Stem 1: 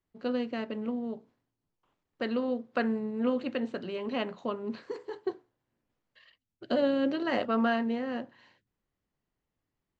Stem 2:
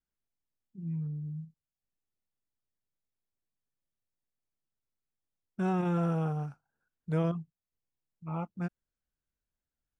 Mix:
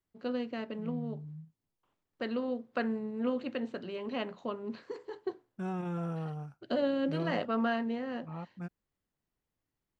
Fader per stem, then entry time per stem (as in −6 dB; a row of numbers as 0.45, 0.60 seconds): −3.5, −6.5 decibels; 0.00, 0.00 seconds